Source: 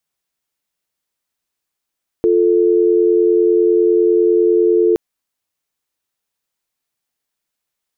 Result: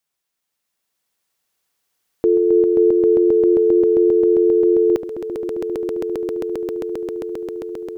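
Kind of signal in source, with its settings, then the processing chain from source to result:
call progress tone dial tone, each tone -12.5 dBFS 2.72 s
low shelf 270 Hz -4 dB; on a send: swelling echo 0.133 s, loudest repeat 8, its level -3.5 dB

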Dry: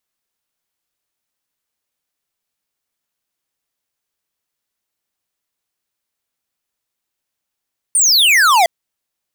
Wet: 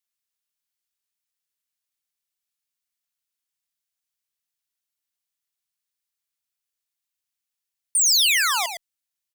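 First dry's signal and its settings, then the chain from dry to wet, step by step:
laser zap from 9500 Hz, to 650 Hz, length 0.71 s square, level -10.5 dB
passive tone stack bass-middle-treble 5-5-5; on a send: echo 0.11 s -8 dB

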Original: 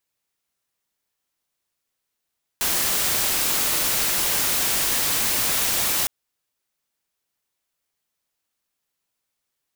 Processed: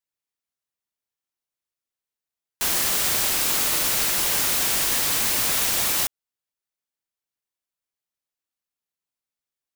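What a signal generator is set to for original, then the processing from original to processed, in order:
noise white, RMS -22 dBFS 3.46 s
upward expander 1.5:1, over -44 dBFS

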